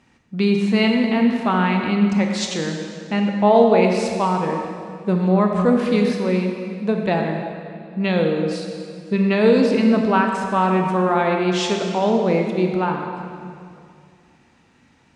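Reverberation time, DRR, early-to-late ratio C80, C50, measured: 2.4 s, 2.0 dB, 4.0 dB, 3.5 dB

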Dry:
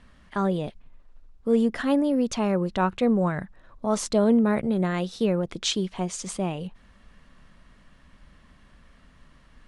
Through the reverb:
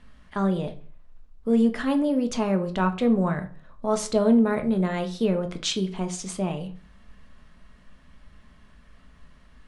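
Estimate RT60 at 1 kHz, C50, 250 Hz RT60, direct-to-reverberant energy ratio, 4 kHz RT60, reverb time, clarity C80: 0.40 s, 14.0 dB, 0.50 s, 6.0 dB, 0.30 s, 0.40 s, 19.5 dB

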